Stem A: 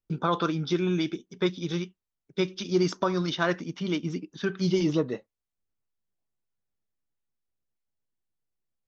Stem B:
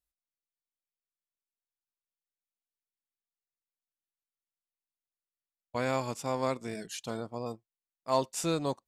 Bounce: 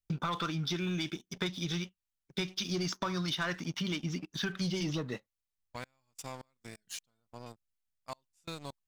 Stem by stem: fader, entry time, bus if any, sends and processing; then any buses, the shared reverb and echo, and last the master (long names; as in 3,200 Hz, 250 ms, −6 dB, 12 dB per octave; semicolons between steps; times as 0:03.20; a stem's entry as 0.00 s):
+2.5 dB, 0.00 s, no send, no processing
−7.0 dB, 0.00 s, no send, downward compressor 2 to 1, threshold −32 dBFS, peak gain reduction 6.5 dB; gate pattern "x...xx..x." 131 BPM −24 dB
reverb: not used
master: parametric band 420 Hz −12 dB 2.4 octaves; leveller curve on the samples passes 2; downward compressor 4 to 1, threshold −33 dBFS, peak gain reduction 11 dB